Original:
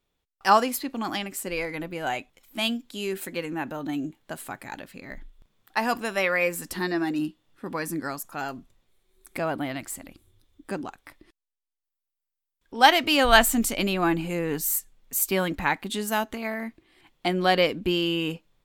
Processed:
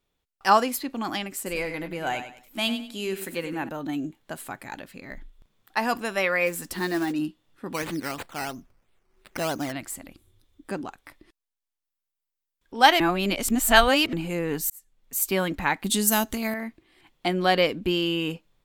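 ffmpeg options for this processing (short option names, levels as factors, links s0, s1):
-filter_complex "[0:a]asettb=1/sr,asplit=3[s0][s1][s2];[s0]atrim=end=1.364[s3];[s1]atrim=start=1.36:end=3.69,asetpts=PTS-STARTPTS,afade=t=in:d=0.004:c=qsin,afade=t=out:st=2.326:d=0.004:c=qsin,aecho=1:1:97|194|291:0.316|0.0949|0.0285,atrim=end_sample=102753[s4];[s2]atrim=start=3.686[s5];[s3][s4]acrossfade=d=0.004:c1=hsin:c2=qsin[s6];[s6][s5]acrossfade=d=0.004:c1=qsin:c2=hsin,asplit=3[s7][s8][s9];[s7]afade=t=out:st=6.46:d=0.02[s10];[s8]acrusher=bits=4:mode=log:mix=0:aa=0.000001,afade=t=in:st=6.46:d=0.02,afade=t=out:st=7.11:d=0.02[s11];[s9]afade=t=in:st=7.11:d=0.02[s12];[s10][s11][s12]amix=inputs=3:normalize=0,asplit=3[s13][s14][s15];[s13]afade=t=out:st=7.73:d=0.02[s16];[s14]acrusher=samples=10:mix=1:aa=0.000001:lfo=1:lforange=6:lforate=3,afade=t=in:st=7.73:d=0.02,afade=t=out:st=9.71:d=0.02[s17];[s15]afade=t=in:st=9.71:d=0.02[s18];[s16][s17][s18]amix=inputs=3:normalize=0,asettb=1/sr,asplit=3[s19][s20][s21];[s19]atrim=end=15.844[s22];[s20]atrim=start=15.84:end=16.54,asetpts=PTS-STARTPTS,afade=t=in:d=0.004:c=qsin,afade=t=out:st=0.696:d=0.004:c=qsin,bass=f=250:g=9,treble=f=4000:g=13[s23];[s21]atrim=start=16.536[s24];[s22][s23]acrossfade=d=0.004:c1=hsin:c2=qsin[s25];[s25][s24]acrossfade=d=0.004:c1=qsin:c2=hsin,asplit=4[s26][s27][s28][s29];[s26]atrim=end=13.002[s30];[s27]atrim=start=12.998:end=14.132,asetpts=PTS-STARTPTS,areverse[s31];[s28]atrim=start=14.128:end=14.7,asetpts=PTS-STARTPTS,afade=t=out:st=0.568:d=0.004:c=hsin[s32];[s29]atrim=start=14.7,asetpts=PTS-STARTPTS,afade=t=in:d=0.56[s33];[s30][s31]acrossfade=d=0.004:c1=hsin:c2=hsin[s34];[s32][s33]concat=n=2:v=0:a=1[s35];[s34][s35]acrossfade=d=0.004:c1=hsin:c2=hsin"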